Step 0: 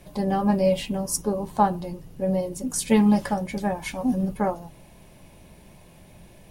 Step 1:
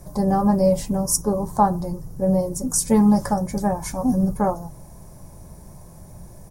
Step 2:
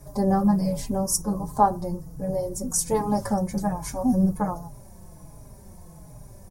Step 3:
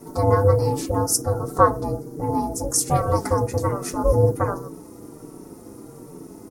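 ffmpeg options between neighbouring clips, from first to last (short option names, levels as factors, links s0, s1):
-filter_complex "[0:a]firequalizer=gain_entry='entry(130,0);entry(230,-7);entry(1100,-4);entry(2800,-25);entry(5500,-2)':delay=0.05:min_phase=1,asplit=2[s0][s1];[s1]alimiter=limit=0.106:level=0:latency=1:release=173,volume=0.794[s2];[s0][s2]amix=inputs=2:normalize=0,volume=1.68"
-filter_complex "[0:a]asplit=2[s0][s1];[s1]adelay=4.4,afreqshift=-1.3[s2];[s0][s2]amix=inputs=2:normalize=1"
-af "aeval=exprs='val(0)*sin(2*PI*300*n/s)':c=same,volume=2.11"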